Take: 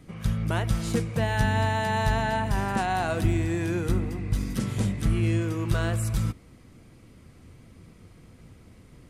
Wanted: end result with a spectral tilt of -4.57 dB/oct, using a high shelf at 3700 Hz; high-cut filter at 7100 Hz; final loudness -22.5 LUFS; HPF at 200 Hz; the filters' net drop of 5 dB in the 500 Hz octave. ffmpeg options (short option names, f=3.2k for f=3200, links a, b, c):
-af "highpass=200,lowpass=7.1k,equalizer=f=500:t=o:g=-7.5,highshelf=f=3.7k:g=4,volume=9dB"